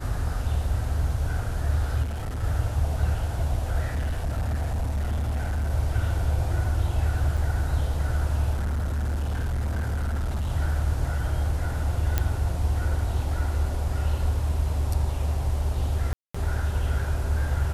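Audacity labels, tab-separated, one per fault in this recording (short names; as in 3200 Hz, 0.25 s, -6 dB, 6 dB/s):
2.020000	2.440000	clipped -27 dBFS
3.920000	5.710000	clipped -23 dBFS
7.370000	7.370000	gap 4.8 ms
8.530000	10.490000	clipped -23.5 dBFS
12.180000	12.180000	pop -9 dBFS
16.130000	16.340000	gap 0.215 s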